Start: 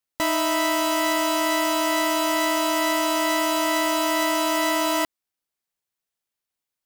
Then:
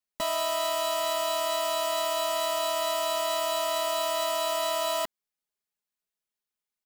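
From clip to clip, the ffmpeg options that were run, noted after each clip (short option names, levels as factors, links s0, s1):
-af "aecho=1:1:4.8:0.86,volume=0.422"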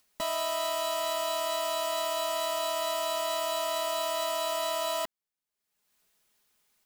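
-af "acompressor=mode=upward:threshold=0.00282:ratio=2.5,volume=0.75"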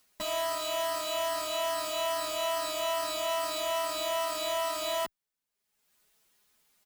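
-filter_complex "[0:a]aeval=exprs='0.0944*(cos(1*acos(clip(val(0)/0.0944,-1,1)))-cos(1*PI/2))+0.015*(cos(5*acos(clip(val(0)/0.0944,-1,1)))-cos(5*PI/2))':c=same,asplit=2[s0][s1];[s1]adelay=8.7,afreqshift=2.4[s2];[s0][s2]amix=inputs=2:normalize=1"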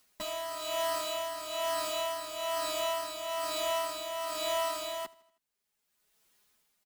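-af "tremolo=f=1.1:d=0.54,aecho=1:1:79|158|237|316:0.0841|0.0454|0.0245|0.0132"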